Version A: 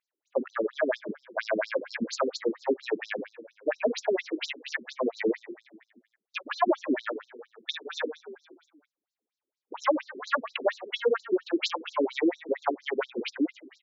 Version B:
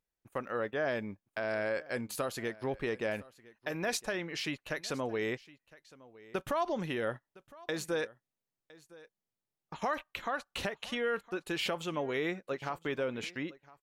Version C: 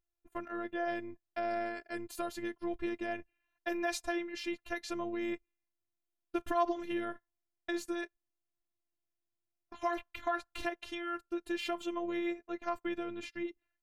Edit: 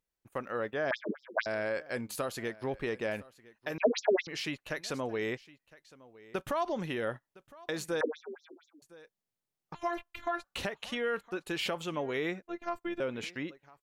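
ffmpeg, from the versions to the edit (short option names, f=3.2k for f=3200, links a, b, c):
-filter_complex "[0:a]asplit=3[a][b][c];[2:a]asplit=2[d][e];[1:a]asplit=6[f][g][h][i][j][k];[f]atrim=end=0.912[l];[a]atrim=start=0.908:end=1.462[m];[g]atrim=start=1.458:end=3.782[n];[b]atrim=start=3.778:end=4.272[o];[h]atrim=start=4.268:end=8.012[p];[c]atrim=start=8.008:end=8.822[q];[i]atrim=start=8.818:end=9.752[r];[d]atrim=start=9.748:end=10.442[s];[j]atrim=start=10.438:end=12.422[t];[e]atrim=start=12.418:end=13.002[u];[k]atrim=start=12.998[v];[l][m]acrossfade=d=0.004:c1=hsin:c2=hsin[w];[w][n]acrossfade=d=0.004:c1=hsin:c2=hsin[x];[x][o]acrossfade=d=0.004:c1=hsin:c2=hsin[y];[y][p]acrossfade=d=0.004:c1=hsin:c2=hsin[z];[z][q]acrossfade=d=0.004:c1=hsin:c2=hsin[aa];[aa][r]acrossfade=d=0.004:c1=hsin:c2=hsin[ab];[ab][s]acrossfade=d=0.004:c1=hsin:c2=hsin[ac];[ac][t]acrossfade=d=0.004:c1=hsin:c2=hsin[ad];[ad][u]acrossfade=d=0.004:c1=hsin:c2=hsin[ae];[ae][v]acrossfade=d=0.004:c1=hsin:c2=hsin"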